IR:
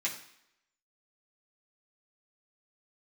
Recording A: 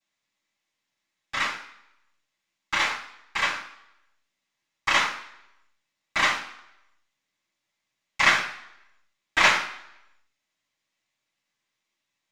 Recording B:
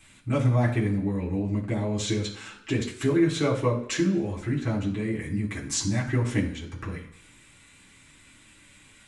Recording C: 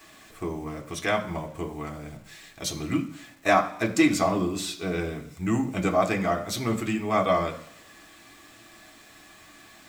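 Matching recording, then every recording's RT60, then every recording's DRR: B; 0.75 s, 0.75 s, 0.75 s; -13.5 dB, -6.5 dB, 1.0 dB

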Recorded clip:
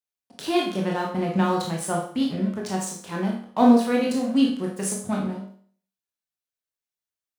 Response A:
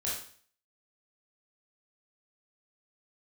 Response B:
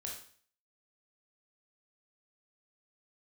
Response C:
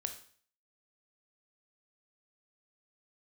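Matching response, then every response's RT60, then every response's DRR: B; 0.50 s, 0.50 s, 0.50 s; -6.5 dB, -1.5 dB, 6.0 dB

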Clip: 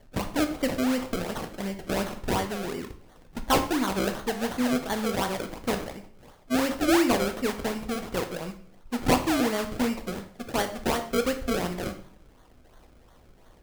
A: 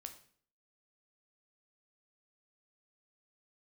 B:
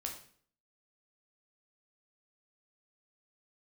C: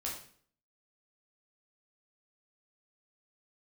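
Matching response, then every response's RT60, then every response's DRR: A; 0.50 s, 0.50 s, 0.50 s; 6.0 dB, 1.0 dB, -3.5 dB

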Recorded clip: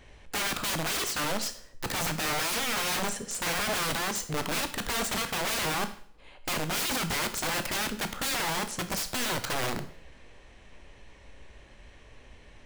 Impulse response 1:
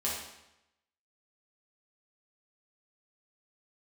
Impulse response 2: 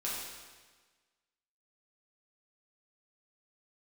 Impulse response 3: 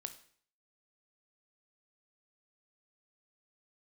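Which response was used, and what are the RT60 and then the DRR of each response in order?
3; 0.90 s, 1.4 s, 0.55 s; -6.5 dB, -7.5 dB, 8.5 dB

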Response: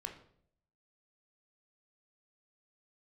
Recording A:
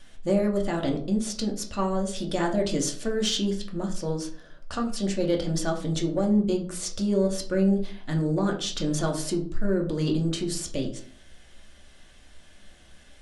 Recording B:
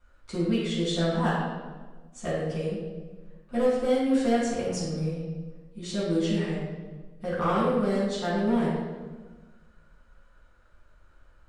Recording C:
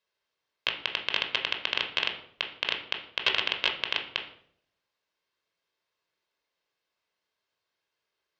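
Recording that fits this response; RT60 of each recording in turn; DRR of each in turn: C; 0.50 s, 1.4 s, 0.65 s; 0.5 dB, -9.0 dB, 3.0 dB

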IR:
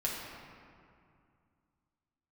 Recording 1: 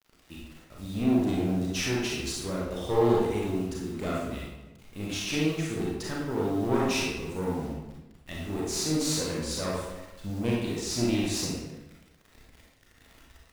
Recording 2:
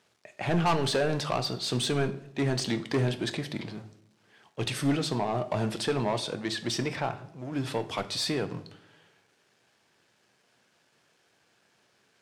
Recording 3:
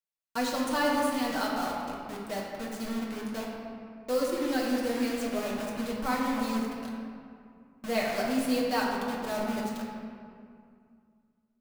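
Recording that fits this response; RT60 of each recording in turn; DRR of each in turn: 3; 1.0 s, 0.75 s, 2.3 s; -5.0 dB, 9.0 dB, -5.0 dB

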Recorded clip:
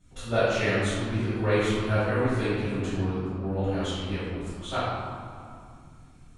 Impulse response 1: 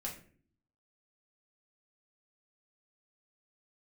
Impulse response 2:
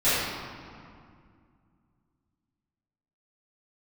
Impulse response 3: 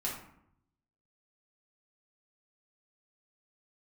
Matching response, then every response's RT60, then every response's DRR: 2; 0.50 s, 2.2 s, 0.70 s; -3.0 dB, -16.0 dB, -5.5 dB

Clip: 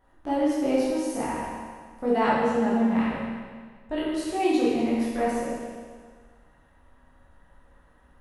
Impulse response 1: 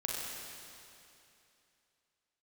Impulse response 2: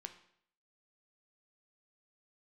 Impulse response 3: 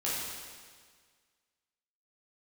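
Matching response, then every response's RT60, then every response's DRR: 3; 2.8 s, 0.65 s, 1.7 s; -4.0 dB, 6.5 dB, -8.5 dB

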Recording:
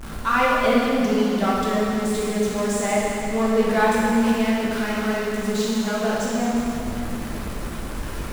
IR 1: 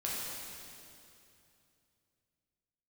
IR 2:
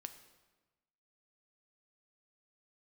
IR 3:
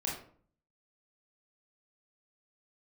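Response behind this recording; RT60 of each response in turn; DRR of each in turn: 1; 2.7 s, 1.2 s, 0.50 s; -6.5 dB, 8.0 dB, -4.0 dB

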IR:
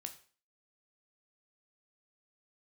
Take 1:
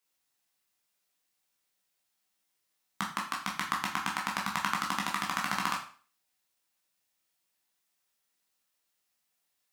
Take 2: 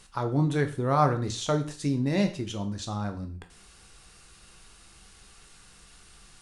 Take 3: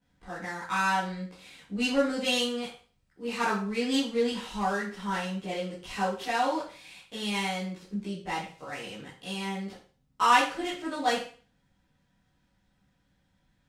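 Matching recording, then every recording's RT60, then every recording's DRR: 2; 0.40 s, 0.40 s, 0.40 s; -2.5 dB, 6.0 dB, -11.0 dB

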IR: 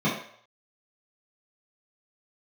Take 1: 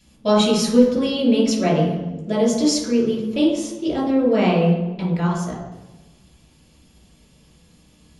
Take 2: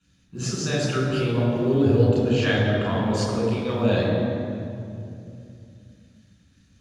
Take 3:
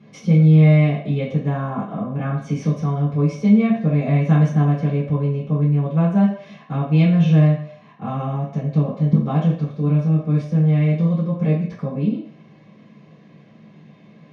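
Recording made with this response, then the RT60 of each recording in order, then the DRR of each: 3; 1.2 s, 2.7 s, 0.60 s; -6.5 dB, -6.0 dB, -9.5 dB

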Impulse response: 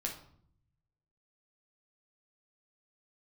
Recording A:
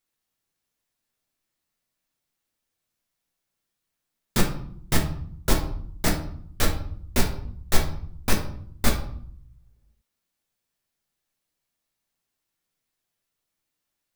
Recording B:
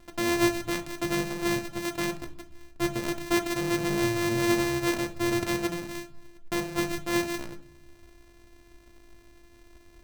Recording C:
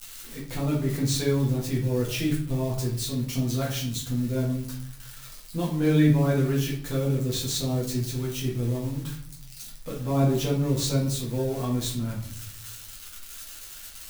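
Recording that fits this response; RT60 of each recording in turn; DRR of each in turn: A; 0.60 s, no single decay rate, 0.60 s; 0.0 dB, 7.5 dB, -5.0 dB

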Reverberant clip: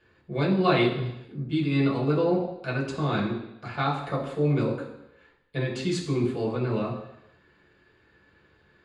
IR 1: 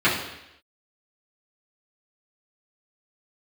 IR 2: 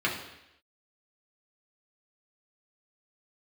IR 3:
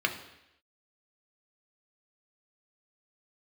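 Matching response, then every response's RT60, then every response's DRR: 2; 0.85 s, 0.85 s, 0.85 s; -11.0 dB, -4.5 dB, 3.0 dB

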